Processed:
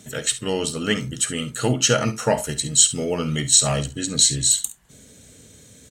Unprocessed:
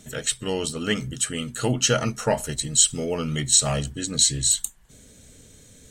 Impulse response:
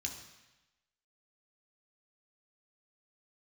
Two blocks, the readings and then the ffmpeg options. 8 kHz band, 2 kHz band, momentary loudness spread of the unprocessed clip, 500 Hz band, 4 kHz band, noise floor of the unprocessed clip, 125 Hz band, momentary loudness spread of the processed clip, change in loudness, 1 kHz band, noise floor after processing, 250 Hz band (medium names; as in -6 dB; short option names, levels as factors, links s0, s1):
+2.5 dB, +2.5 dB, 9 LU, +2.5 dB, +2.5 dB, -51 dBFS, +2.0 dB, 9 LU, +2.5 dB, +2.5 dB, -49 dBFS, +2.5 dB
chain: -filter_complex "[0:a]highpass=72,asplit=2[s0][s1];[s1]aecho=0:1:51|69:0.158|0.158[s2];[s0][s2]amix=inputs=2:normalize=0,volume=1.33"